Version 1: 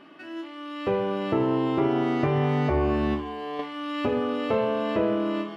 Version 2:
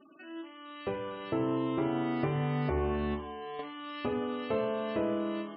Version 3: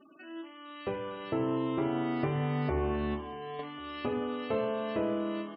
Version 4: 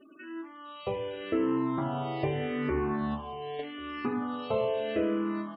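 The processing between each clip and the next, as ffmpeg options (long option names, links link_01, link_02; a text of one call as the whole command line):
ffmpeg -i in.wav -af "afftfilt=real='re*gte(hypot(re,im),0.00631)':imag='im*gte(hypot(re,im),0.00631)':win_size=1024:overlap=0.75,bandreject=frequency=98.13:width_type=h:width=4,bandreject=frequency=196.26:width_type=h:width=4,bandreject=frequency=294.39:width_type=h:width=4,bandreject=frequency=392.52:width_type=h:width=4,bandreject=frequency=490.65:width_type=h:width=4,bandreject=frequency=588.78:width_type=h:width=4,bandreject=frequency=686.91:width_type=h:width=4,bandreject=frequency=785.04:width_type=h:width=4,bandreject=frequency=883.17:width_type=h:width=4,bandreject=frequency=981.3:width_type=h:width=4,bandreject=frequency=1079.43:width_type=h:width=4,bandreject=frequency=1177.56:width_type=h:width=4,bandreject=frequency=1275.69:width_type=h:width=4,bandreject=frequency=1373.82:width_type=h:width=4,bandreject=frequency=1471.95:width_type=h:width=4,bandreject=frequency=1570.08:width_type=h:width=4,bandreject=frequency=1668.21:width_type=h:width=4,volume=-6.5dB" out.wav
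ffmpeg -i in.wav -af "aecho=1:1:1091:0.0668" out.wav
ffmpeg -i in.wav -filter_complex "[0:a]asplit=2[link_01][link_02];[link_02]afreqshift=-0.81[link_03];[link_01][link_03]amix=inputs=2:normalize=1,volume=4.5dB" out.wav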